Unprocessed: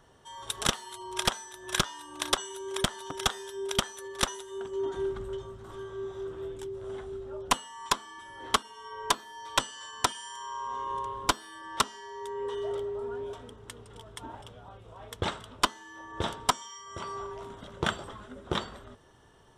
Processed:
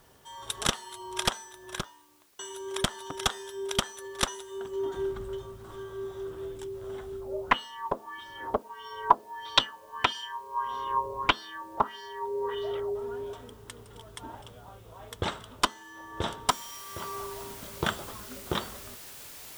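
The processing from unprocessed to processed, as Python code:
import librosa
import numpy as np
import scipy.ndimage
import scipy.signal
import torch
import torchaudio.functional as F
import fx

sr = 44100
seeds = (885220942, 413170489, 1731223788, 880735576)

y = fx.studio_fade_out(x, sr, start_s=1.26, length_s=1.13)
y = fx.filter_lfo_lowpass(y, sr, shape='sine', hz=1.6, low_hz=550.0, high_hz=4600.0, q=3.3, at=(7.2, 12.94), fade=0.02)
y = fx.noise_floor_step(y, sr, seeds[0], at_s=16.49, before_db=-65, after_db=-46, tilt_db=0.0)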